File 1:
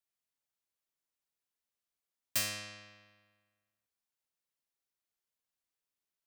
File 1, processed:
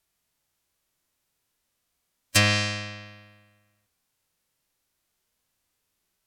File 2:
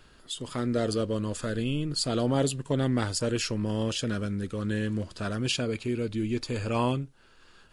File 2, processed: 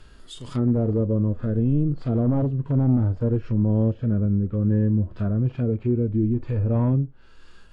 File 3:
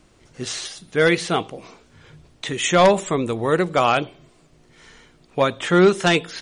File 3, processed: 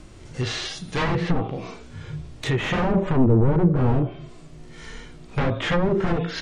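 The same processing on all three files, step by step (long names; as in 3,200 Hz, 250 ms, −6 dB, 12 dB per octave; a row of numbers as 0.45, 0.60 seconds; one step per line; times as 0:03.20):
wave folding −21.5 dBFS
harmonic and percussive parts rebalanced percussive −13 dB
low-shelf EQ 180 Hz +9 dB
treble cut that deepens with the level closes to 720 Hz, closed at −24.5 dBFS
loudness normalisation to −23 LKFS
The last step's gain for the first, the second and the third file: +18.5, +5.5, +9.5 decibels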